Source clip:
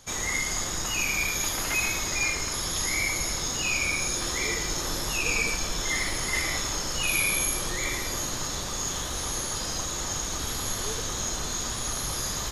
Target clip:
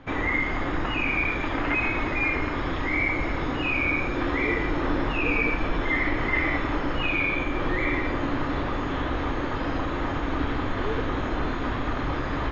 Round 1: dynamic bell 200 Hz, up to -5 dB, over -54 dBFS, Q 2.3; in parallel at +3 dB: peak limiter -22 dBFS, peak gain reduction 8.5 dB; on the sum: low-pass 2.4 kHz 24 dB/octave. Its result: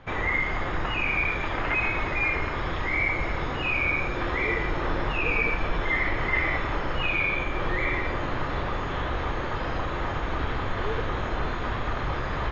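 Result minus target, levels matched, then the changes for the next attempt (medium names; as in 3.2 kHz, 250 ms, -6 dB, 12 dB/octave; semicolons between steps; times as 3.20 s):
250 Hz band -6.0 dB
add after low-pass: peaking EQ 280 Hz +11.5 dB 0.42 oct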